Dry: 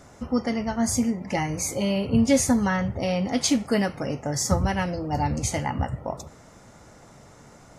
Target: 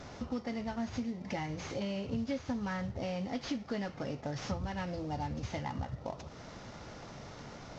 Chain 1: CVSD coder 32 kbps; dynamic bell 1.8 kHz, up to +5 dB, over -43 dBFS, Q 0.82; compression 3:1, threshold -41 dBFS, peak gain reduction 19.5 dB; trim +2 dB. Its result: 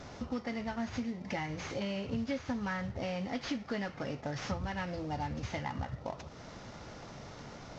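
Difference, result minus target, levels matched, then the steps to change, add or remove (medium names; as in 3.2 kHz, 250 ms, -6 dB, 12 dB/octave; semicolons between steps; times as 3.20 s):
2 kHz band +3.0 dB
remove: dynamic bell 1.8 kHz, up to +5 dB, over -43 dBFS, Q 0.82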